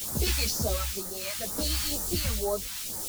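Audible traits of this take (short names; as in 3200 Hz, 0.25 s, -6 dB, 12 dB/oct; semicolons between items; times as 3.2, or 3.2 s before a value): a quantiser's noise floor 6-bit, dither triangular; phasing stages 2, 2.1 Hz, lowest notch 420–2600 Hz; tremolo triangle 0.66 Hz, depth 50%; a shimmering, thickened sound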